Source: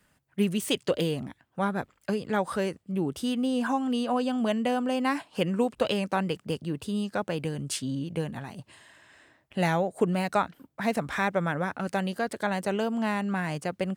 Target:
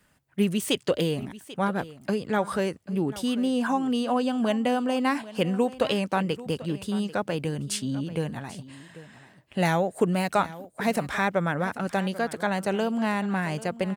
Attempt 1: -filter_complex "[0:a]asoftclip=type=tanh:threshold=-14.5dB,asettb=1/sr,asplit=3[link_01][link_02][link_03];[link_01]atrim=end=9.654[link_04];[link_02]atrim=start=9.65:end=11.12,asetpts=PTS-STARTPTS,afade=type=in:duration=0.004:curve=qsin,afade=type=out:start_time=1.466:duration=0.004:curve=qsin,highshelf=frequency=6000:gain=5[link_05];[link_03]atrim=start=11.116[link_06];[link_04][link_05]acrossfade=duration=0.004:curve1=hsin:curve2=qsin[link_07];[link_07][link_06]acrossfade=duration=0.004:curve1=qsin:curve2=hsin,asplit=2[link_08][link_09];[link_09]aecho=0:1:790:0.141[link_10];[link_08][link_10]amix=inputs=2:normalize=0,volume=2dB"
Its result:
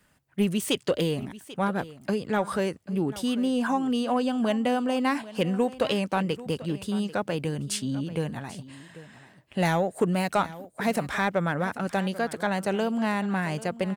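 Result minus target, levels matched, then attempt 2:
soft clipping: distortion +13 dB
-filter_complex "[0:a]asoftclip=type=tanh:threshold=-7dB,asettb=1/sr,asplit=3[link_01][link_02][link_03];[link_01]atrim=end=9.654[link_04];[link_02]atrim=start=9.65:end=11.12,asetpts=PTS-STARTPTS,afade=type=in:duration=0.004:curve=qsin,afade=type=out:start_time=1.466:duration=0.004:curve=qsin,highshelf=frequency=6000:gain=5[link_05];[link_03]atrim=start=11.116[link_06];[link_04][link_05]acrossfade=duration=0.004:curve1=hsin:curve2=qsin[link_07];[link_07][link_06]acrossfade=duration=0.004:curve1=qsin:curve2=hsin,asplit=2[link_08][link_09];[link_09]aecho=0:1:790:0.141[link_10];[link_08][link_10]amix=inputs=2:normalize=0,volume=2dB"

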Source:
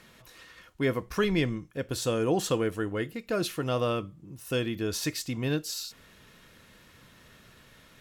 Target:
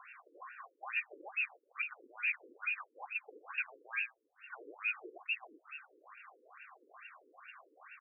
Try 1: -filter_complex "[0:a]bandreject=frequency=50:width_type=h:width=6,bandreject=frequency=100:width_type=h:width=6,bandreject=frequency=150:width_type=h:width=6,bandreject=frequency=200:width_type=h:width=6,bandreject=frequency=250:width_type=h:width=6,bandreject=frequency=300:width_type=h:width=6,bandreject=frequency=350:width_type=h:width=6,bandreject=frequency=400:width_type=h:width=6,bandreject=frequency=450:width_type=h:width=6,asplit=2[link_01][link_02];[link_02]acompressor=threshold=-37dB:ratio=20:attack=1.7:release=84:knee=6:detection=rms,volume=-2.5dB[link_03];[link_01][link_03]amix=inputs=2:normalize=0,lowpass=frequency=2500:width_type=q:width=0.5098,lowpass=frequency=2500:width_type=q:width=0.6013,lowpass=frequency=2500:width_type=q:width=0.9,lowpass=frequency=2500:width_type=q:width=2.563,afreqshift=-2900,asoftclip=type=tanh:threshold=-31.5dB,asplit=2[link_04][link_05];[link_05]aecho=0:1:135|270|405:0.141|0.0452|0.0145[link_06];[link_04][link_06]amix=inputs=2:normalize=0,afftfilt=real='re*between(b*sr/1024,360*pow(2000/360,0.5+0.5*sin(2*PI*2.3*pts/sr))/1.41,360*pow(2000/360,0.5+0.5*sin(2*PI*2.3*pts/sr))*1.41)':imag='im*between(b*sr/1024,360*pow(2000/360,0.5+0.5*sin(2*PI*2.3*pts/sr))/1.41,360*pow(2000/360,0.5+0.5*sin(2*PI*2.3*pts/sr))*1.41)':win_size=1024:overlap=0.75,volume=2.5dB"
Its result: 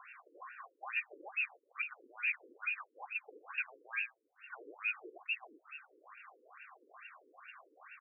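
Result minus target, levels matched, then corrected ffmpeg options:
downward compressor: peak gain reduction +9 dB
-filter_complex "[0:a]bandreject=frequency=50:width_type=h:width=6,bandreject=frequency=100:width_type=h:width=6,bandreject=frequency=150:width_type=h:width=6,bandreject=frequency=200:width_type=h:width=6,bandreject=frequency=250:width_type=h:width=6,bandreject=frequency=300:width_type=h:width=6,bandreject=frequency=350:width_type=h:width=6,bandreject=frequency=400:width_type=h:width=6,bandreject=frequency=450:width_type=h:width=6,asplit=2[link_01][link_02];[link_02]acompressor=threshold=-27.5dB:ratio=20:attack=1.7:release=84:knee=6:detection=rms,volume=-2.5dB[link_03];[link_01][link_03]amix=inputs=2:normalize=0,lowpass=frequency=2500:width_type=q:width=0.5098,lowpass=frequency=2500:width_type=q:width=0.6013,lowpass=frequency=2500:width_type=q:width=0.9,lowpass=frequency=2500:width_type=q:width=2.563,afreqshift=-2900,asoftclip=type=tanh:threshold=-31.5dB,asplit=2[link_04][link_05];[link_05]aecho=0:1:135|270|405:0.141|0.0452|0.0145[link_06];[link_04][link_06]amix=inputs=2:normalize=0,afftfilt=real='re*between(b*sr/1024,360*pow(2000/360,0.5+0.5*sin(2*PI*2.3*pts/sr))/1.41,360*pow(2000/360,0.5+0.5*sin(2*PI*2.3*pts/sr))*1.41)':imag='im*between(b*sr/1024,360*pow(2000/360,0.5+0.5*sin(2*PI*2.3*pts/sr))/1.41,360*pow(2000/360,0.5+0.5*sin(2*PI*2.3*pts/sr))*1.41)':win_size=1024:overlap=0.75,volume=2.5dB"

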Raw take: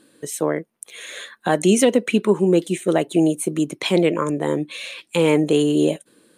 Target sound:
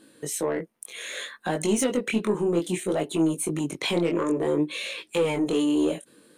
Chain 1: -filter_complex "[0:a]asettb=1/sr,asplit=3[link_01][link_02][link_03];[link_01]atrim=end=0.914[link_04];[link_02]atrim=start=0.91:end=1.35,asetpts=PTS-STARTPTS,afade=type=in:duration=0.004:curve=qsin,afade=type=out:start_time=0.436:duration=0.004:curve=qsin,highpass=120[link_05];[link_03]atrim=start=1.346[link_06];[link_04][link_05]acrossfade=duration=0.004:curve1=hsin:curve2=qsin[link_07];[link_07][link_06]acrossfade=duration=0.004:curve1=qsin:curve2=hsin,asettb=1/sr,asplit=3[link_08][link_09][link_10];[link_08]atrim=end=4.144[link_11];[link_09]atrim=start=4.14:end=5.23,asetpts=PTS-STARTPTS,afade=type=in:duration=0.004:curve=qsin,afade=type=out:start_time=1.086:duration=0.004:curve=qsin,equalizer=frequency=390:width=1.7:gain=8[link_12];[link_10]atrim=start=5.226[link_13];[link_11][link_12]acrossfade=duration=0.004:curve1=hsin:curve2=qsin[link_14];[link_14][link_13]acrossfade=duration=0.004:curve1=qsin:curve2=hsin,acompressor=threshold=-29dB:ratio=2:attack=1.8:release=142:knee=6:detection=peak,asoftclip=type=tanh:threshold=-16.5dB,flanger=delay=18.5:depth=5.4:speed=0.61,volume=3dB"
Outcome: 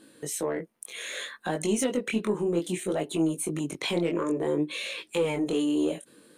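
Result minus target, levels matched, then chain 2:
downward compressor: peak gain reduction +4 dB
-filter_complex "[0:a]asettb=1/sr,asplit=3[link_01][link_02][link_03];[link_01]atrim=end=0.914[link_04];[link_02]atrim=start=0.91:end=1.35,asetpts=PTS-STARTPTS,afade=type=in:duration=0.004:curve=qsin,afade=type=out:start_time=0.436:duration=0.004:curve=qsin,highpass=120[link_05];[link_03]atrim=start=1.346[link_06];[link_04][link_05]acrossfade=duration=0.004:curve1=hsin:curve2=qsin[link_07];[link_07][link_06]acrossfade=duration=0.004:curve1=qsin:curve2=hsin,asettb=1/sr,asplit=3[link_08][link_09][link_10];[link_08]atrim=end=4.144[link_11];[link_09]atrim=start=4.14:end=5.23,asetpts=PTS-STARTPTS,afade=type=in:duration=0.004:curve=qsin,afade=type=out:start_time=1.086:duration=0.004:curve=qsin,equalizer=frequency=390:width=1.7:gain=8[link_12];[link_10]atrim=start=5.226[link_13];[link_11][link_12]acrossfade=duration=0.004:curve1=hsin:curve2=qsin[link_14];[link_14][link_13]acrossfade=duration=0.004:curve1=qsin:curve2=hsin,acompressor=threshold=-21.5dB:ratio=2:attack=1.8:release=142:knee=6:detection=peak,asoftclip=type=tanh:threshold=-16.5dB,flanger=delay=18.5:depth=5.4:speed=0.61,volume=3dB"

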